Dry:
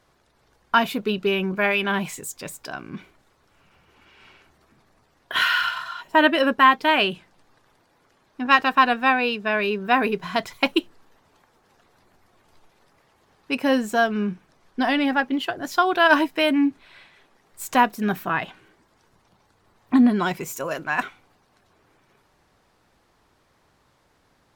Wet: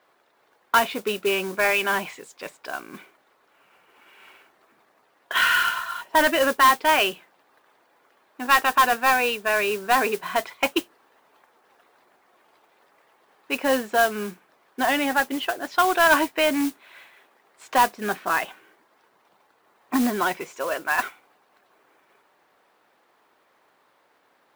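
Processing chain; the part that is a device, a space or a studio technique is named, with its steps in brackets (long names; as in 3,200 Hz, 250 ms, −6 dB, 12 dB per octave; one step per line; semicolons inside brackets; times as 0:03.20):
carbon microphone (band-pass filter 400–3,200 Hz; soft clipping −12.5 dBFS, distortion −13 dB; noise that follows the level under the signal 14 dB)
level +2.5 dB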